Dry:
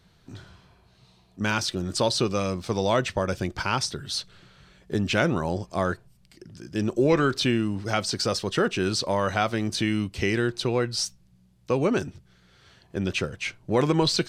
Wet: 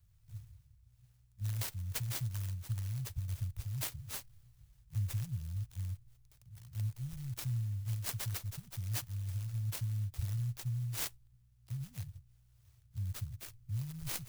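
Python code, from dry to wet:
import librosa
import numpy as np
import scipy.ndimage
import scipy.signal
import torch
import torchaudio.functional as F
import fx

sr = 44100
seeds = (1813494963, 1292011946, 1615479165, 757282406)

y = scipy.signal.sosfilt(scipy.signal.cheby1(4, 1.0, [120.0, 6300.0], 'bandstop', fs=sr, output='sos'), x)
y = fx.clock_jitter(y, sr, seeds[0], jitter_ms=0.054)
y = F.gain(torch.from_numpy(y), -2.0).numpy()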